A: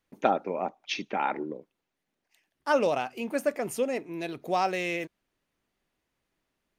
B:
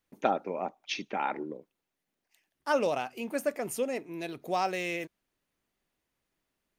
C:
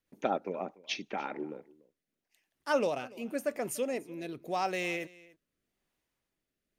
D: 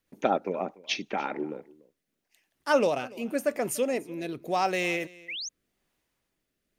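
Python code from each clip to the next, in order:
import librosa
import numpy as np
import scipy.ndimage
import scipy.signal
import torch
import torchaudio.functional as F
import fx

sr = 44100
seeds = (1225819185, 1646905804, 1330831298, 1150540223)

y1 = fx.high_shelf(x, sr, hz=7500.0, db=6.0)
y1 = y1 * 10.0 ** (-3.0 / 20.0)
y2 = fx.rotary_switch(y1, sr, hz=8.0, then_hz=0.9, switch_at_s=0.54)
y2 = y2 + 10.0 ** (-22.0 / 20.0) * np.pad(y2, (int(291 * sr / 1000.0), 0))[:len(y2)]
y3 = fx.spec_paint(y2, sr, seeds[0], shape='rise', start_s=5.28, length_s=0.21, low_hz=1900.0, high_hz=6800.0, level_db=-41.0)
y3 = y3 * 10.0 ** (5.5 / 20.0)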